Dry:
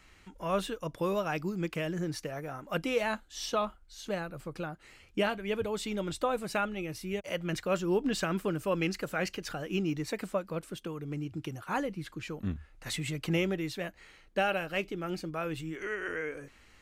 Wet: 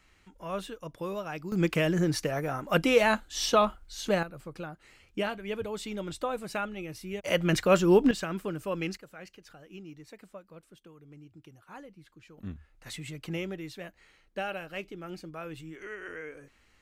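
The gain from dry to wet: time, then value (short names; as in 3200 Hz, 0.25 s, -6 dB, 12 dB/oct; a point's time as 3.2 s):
-4.5 dB
from 1.52 s +7.5 dB
from 4.23 s -2 dB
from 7.23 s +8 dB
from 8.11 s -2.5 dB
from 8.97 s -14.5 dB
from 12.38 s -5.5 dB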